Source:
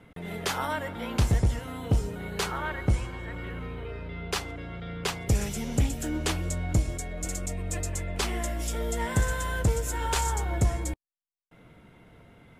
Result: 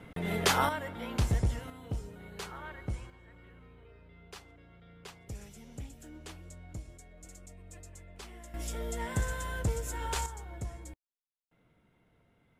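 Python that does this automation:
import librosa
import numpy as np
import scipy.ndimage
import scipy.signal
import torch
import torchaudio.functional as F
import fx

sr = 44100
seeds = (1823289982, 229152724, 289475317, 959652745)

y = fx.gain(x, sr, db=fx.steps((0.0, 3.5), (0.69, -5.0), (1.7, -12.0), (3.1, -18.5), (8.54, -6.5), (10.26, -15.0)))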